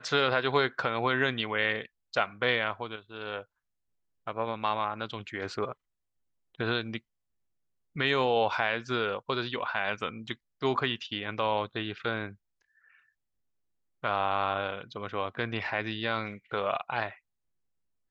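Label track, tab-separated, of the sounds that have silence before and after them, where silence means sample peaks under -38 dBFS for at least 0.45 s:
4.270000	5.720000	sound
6.600000	6.970000	sound
7.960000	12.310000	sound
14.040000	17.130000	sound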